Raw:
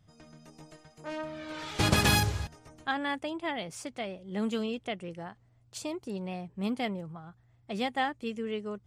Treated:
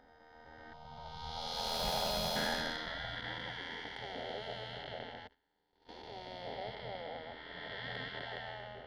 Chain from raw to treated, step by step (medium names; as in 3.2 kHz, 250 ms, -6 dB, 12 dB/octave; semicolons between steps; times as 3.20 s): spectral blur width 827 ms; level-controlled noise filter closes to 2 kHz, open at -29 dBFS; 5.27–5.89 s: gate -43 dBFS, range -29 dB; static phaser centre 1.7 kHz, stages 8; spectral gate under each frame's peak -10 dB weak; AM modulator 82 Hz, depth 35%; 0.73–2.36 s: static phaser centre 730 Hz, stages 4; slew-rate limiter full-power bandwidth 18 Hz; trim +11.5 dB